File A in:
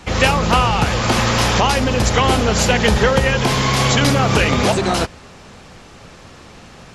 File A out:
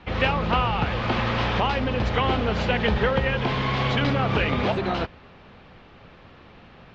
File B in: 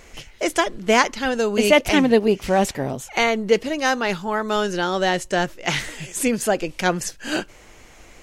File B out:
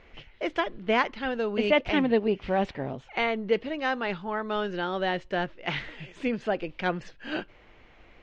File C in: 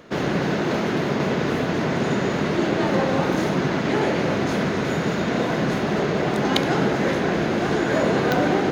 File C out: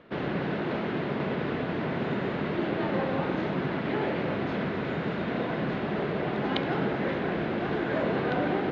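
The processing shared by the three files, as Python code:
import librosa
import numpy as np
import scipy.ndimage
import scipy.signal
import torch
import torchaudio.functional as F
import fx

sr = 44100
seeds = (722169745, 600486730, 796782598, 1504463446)

y = scipy.signal.sosfilt(scipy.signal.butter(4, 3600.0, 'lowpass', fs=sr, output='sos'), x)
y = y * librosa.db_to_amplitude(-7.5)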